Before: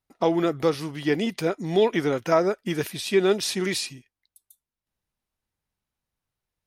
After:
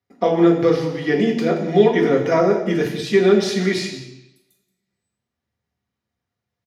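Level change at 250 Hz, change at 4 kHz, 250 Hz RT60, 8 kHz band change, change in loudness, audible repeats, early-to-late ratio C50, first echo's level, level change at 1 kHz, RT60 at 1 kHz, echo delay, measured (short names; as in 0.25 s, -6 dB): +8.0 dB, +1.5 dB, 0.80 s, -2.0 dB, +6.5 dB, 1, 6.5 dB, -15.5 dB, +4.5 dB, 0.85 s, 0.178 s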